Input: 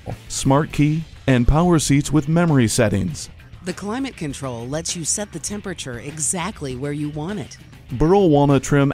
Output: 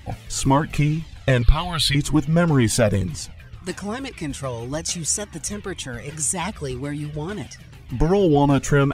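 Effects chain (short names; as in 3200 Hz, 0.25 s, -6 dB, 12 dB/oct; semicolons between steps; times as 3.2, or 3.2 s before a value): 1.42–1.95 EQ curve 120 Hz 0 dB, 220 Hz -20 dB, 4200 Hz +13 dB, 6100 Hz -13 dB, 9900 Hz +1 dB; cascading flanger falling 1.9 Hz; gain +3 dB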